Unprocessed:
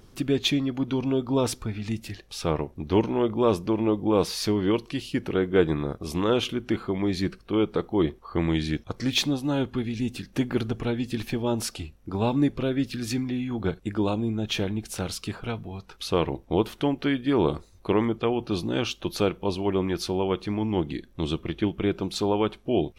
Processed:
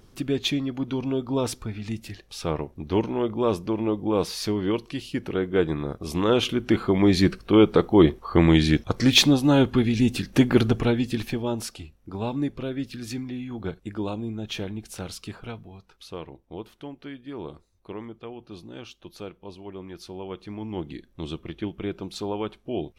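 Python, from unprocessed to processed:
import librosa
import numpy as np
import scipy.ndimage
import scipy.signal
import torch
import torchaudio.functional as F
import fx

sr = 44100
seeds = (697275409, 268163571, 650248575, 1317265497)

y = fx.gain(x, sr, db=fx.line((5.76, -1.5), (7.08, 7.5), (10.7, 7.5), (11.76, -4.5), (15.43, -4.5), (16.26, -14.0), (19.77, -14.0), (20.88, -5.5)))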